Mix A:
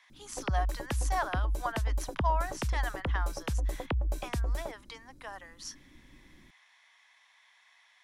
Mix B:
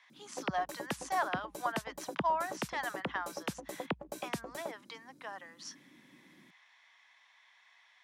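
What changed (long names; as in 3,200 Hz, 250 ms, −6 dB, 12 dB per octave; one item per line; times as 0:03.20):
speech: add high-frequency loss of the air 67 metres
master: add Chebyshev high-pass filter 170 Hz, order 3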